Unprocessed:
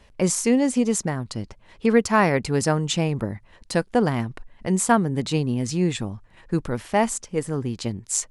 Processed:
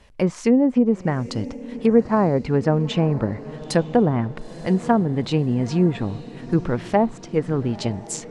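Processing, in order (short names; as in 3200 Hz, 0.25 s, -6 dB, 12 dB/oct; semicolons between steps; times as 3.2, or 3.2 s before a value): AGC gain up to 3 dB; treble ducked by the level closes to 720 Hz, closed at -13.5 dBFS; diffused feedback echo 0.919 s, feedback 49%, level -16 dB; gain +1 dB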